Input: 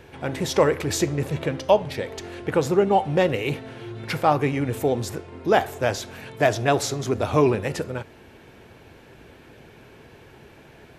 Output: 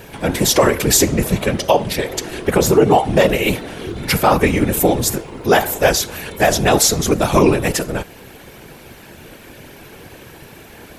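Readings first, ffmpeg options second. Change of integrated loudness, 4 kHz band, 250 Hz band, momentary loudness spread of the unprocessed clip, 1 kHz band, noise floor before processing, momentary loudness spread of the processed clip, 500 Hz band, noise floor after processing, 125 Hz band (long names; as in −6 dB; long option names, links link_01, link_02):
+7.5 dB, +12.0 dB, +8.0 dB, 12 LU, +6.0 dB, −49 dBFS, 11 LU, +6.0 dB, −41 dBFS, +6.0 dB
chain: -af "aemphasis=mode=production:type=50fm,afftfilt=real='hypot(re,im)*cos(2*PI*random(0))':imag='hypot(re,im)*sin(2*PI*random(1))':win_size=512:overlap=0.75,alimiter=level_in=15.5dB:limit=-1dB:release=50:level=0:latency=1,volume=-1dB"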